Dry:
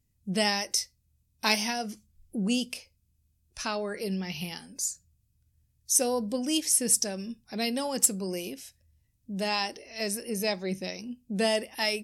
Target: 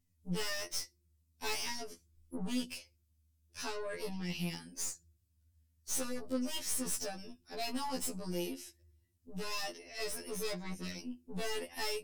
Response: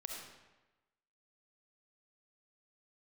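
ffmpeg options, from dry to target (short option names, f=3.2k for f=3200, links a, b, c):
-filter_complex "[0:a]aeval=exprs='(tanh(35.5*val(0)+0.45)-tanh(0.45))/35.5':c=same,asplit=2[a][b];[b]asuperpass=centerf=350:order=20:qfactor=3.6[c];[1:a]atrim=start_sample=2205,highshelf=f=3.5k:g=-11.5,adelay=34[d];[c][d]afir=irnorm=-1:irlink=0,volume=-14.5dB[e];[a][e]amix=inputs=2:normalize=0,afftfilt=real='re*2*eq(mod(b,4),0)':imag='im*2*eq(mod(b,4),0)':win_size=2048:overlap=0.75"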